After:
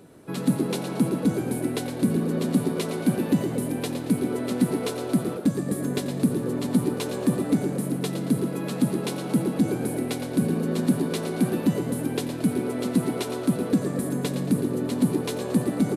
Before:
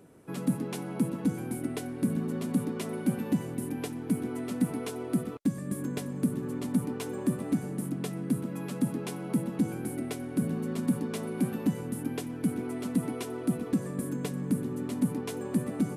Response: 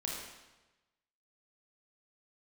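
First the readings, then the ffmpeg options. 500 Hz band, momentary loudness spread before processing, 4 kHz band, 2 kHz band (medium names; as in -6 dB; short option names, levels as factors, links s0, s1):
+8.5 dB, 5 LU, +10.0 dB, +6.5 dB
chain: -filter_complex "[0:a]equalizer=f=4000:w=3:g=7,asplit=6[s0][s1][s2][s3][s4][s5];[s1]adelay=113,afreqshift=120,volume=0.355[s6];[s2]adelay=226,afreqshift=240,volume=0.153[s7];[s3]adelay=339,afreqshift=360,volume=0.0653[s8];[s4]adelay=452,afreqshift=480,volume=0.0282[s9];[s5]adelay=565,afreqshift=600,volume=0.0122[s10];[s0][s6][s7][s8][s9][s10]amix=inputs=6:normalize=0,asplit=2[s11][s12];[1:a]atrim=start_sample=2205,adelay=89[s13];[s12][s13]afir=irnorm=-1:irlink=0,volume=0.158[s14];[s11][s14]amix=inputs=2:normalize=0,volume=1.88"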